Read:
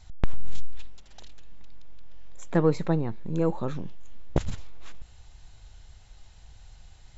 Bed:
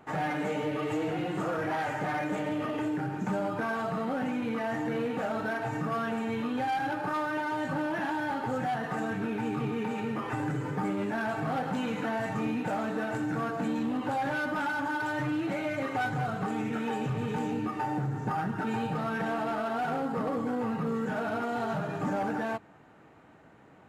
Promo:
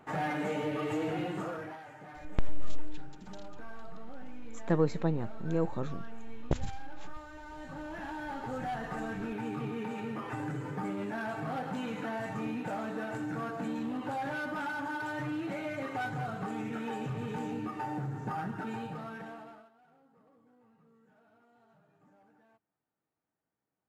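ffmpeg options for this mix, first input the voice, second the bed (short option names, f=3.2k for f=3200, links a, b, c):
-filter_complex "[0:a]adelay=2150,volume=-5dB[a];[1:a]volume=10.5dB,afade=t=out:st=1.21:d=0.59:silence=0.16788,afade=t=in:st=7.38:d=1.36:silence=0.237137,afade=t=out:st=18.47:d=1.24:silence=0.0354813[b];[a][b]amix=inputs=2:normalize=0"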